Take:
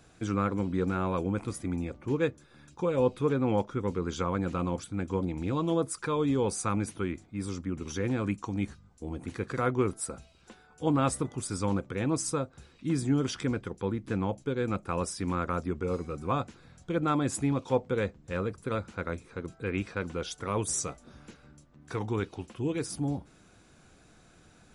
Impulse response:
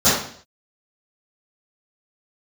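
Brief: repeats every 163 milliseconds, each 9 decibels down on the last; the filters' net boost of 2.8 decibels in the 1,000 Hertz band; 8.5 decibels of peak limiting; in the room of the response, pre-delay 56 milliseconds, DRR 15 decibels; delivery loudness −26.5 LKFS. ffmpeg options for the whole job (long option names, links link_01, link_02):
-filter_complex "[0:a]equalizer=frequency=1000:width_type=o:gain=3.5,alimiter=limit=-21.5dB:level=0:latency=1,aecho=1:1:163|326|489|652:0.355|0.124|0.0435|0.0152,asplit=2[link_01][link_02];[1:a]atrim=start_sample=2205,adelay=56[link_03];[link_02][link_03]afir=irnorm=-1:irlink=0,volume=-37.5dB[link_04];[link_01][link_04]amix=inputs=2:normalize=0,volume=6dB"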